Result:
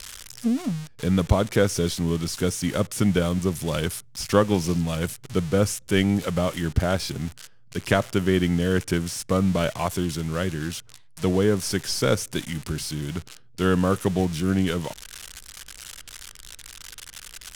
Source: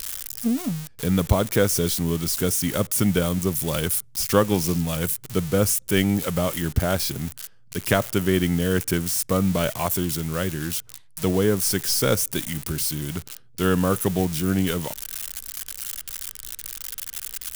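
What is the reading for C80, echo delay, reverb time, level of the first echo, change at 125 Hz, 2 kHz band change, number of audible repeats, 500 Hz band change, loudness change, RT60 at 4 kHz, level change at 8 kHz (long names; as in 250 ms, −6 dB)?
no reverb audible, no echo audible, no reverb audible, no echo audible, 0.0 dB, −0.5 dB, no echo audible, 0.0 dB, −1.0 dB, no reverb audible, −6.5 dB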